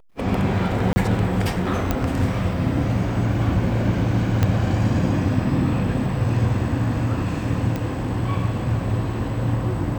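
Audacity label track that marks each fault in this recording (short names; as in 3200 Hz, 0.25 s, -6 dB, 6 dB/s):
0.930000	0.960000	gap 30 ms
1.910000	1.910000	pop -7 dBFS
4.430000	4.430000	pop -6 dBFS
7.760000	7.760000	pop -13 dBFS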